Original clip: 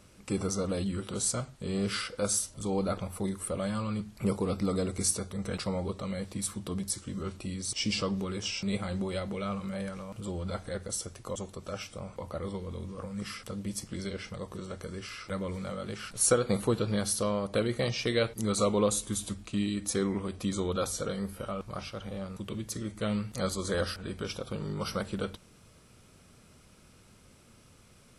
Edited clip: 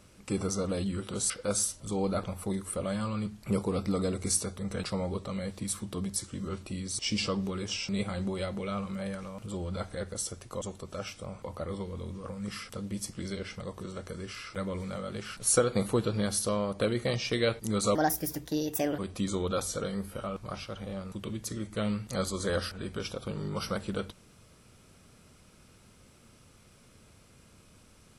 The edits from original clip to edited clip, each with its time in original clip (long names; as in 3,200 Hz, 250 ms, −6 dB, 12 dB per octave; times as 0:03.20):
0:01.30–0:02.04: remove
0:18.69–0:20.23: play speed 149%